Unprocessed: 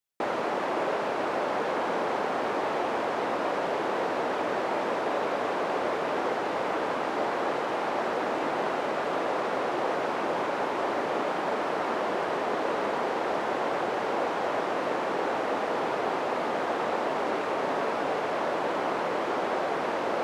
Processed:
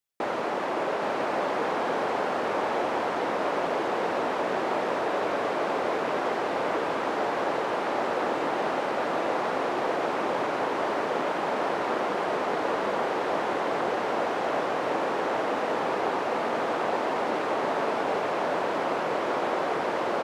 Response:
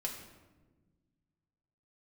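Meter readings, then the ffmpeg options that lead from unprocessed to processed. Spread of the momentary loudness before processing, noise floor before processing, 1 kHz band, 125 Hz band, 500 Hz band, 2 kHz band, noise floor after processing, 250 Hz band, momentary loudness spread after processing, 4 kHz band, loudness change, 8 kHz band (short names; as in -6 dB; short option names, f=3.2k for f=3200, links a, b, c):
0 LU, -30 dBFS, +1.0 dB, +1.5 dB, +1.0 dB, +1.0 dB, -29 dBFS, +1.0 dB, 1 LU, +1.0 dB, +1.0 dB, +1.0 dB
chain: -af "aecho=1:1:817:0.562"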